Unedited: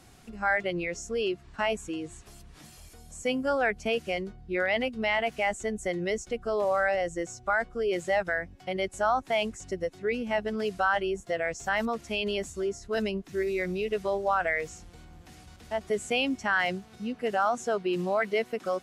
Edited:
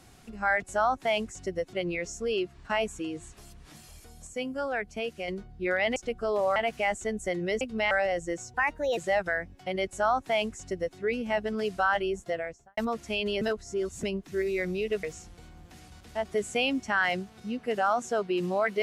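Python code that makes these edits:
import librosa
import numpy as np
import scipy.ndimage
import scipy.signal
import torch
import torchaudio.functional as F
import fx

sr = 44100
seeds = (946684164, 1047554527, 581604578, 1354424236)

y = fx.studio_fade_out(x, sr, start_s=11.22, length_s=0.56)
y = fx.edit(y, sr, fx.clip_gain(start_s=3.16, length_s=1.01, db=-5.0),
    fx.swap(start_s=4.85, length_s=0.3, other_s=6.2, other_length_s=0.6),
    fx.speed_span(start_s=7.43, length_s=0.55, speed=1.27),
    fx.duplicate(start_s=8.87, length_s=1.11, to_s=0.62),
    fx.reverse_span(start_s=12.42, length_s=0.62),
    fx.cut(start_s=14.04, length_s=0.55), tone=tone)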